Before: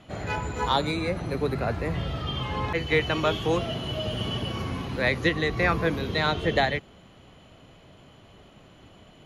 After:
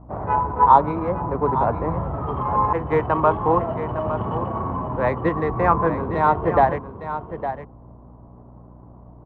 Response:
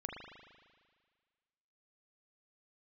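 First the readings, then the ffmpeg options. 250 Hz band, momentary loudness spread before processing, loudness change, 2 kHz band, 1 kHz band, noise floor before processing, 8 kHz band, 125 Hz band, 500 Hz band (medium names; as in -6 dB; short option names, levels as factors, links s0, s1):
+3.5 dB, 7 LU, +5.5 dB, -4.5 dB, +12.5 dB, -53 dBFS, under -20 dB, +3.0 dB, +5.5 dB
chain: -filter_complex "[0:a]adynamicsmooth=sensitivity=5:basefreq=550,aeval=exprs='val(0)+0.00501*(sin(2*PI*60*n/s)+sin(2*PI*2*60*n/s)/2+sin(2*PI*3*60*n/s)/3+sin(2*PI*4*60*n/s)/4+sin(2*PI*5*60*n/s)/5)':c=same,lowpass=f=1000:t=q:w=4.9,asplit=2[s0][s1];[s1]aecho=0:1:859:0.299[s2];[s0][s2]amix=inputs=2:normalize=0,volume=1.33"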